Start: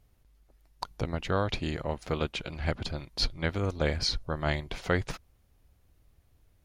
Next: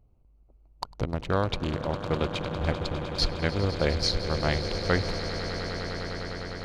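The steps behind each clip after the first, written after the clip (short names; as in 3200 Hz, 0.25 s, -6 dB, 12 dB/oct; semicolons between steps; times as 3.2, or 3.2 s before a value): Wiener smoothing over 25 samples; on a send: swelling echo 0.101 s, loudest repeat 8, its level -14 dB; on the sum: gain +2.5 dB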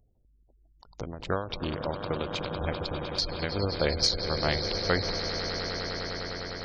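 spectral gate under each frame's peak -30 dB strong; tone controls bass -4 dB, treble +8 dB; ending taper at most 100 dB/s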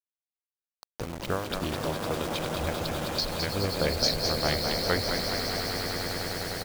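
in parallel at -2 dB: compressor, threshold -36 dBFS, peak gain reduction 15 dB; on the sum: bit-crush 6-bit; frequency-shifting echo 0.212 s, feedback 56%, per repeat +79 Hz, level -6 dB; gain -2.5 dB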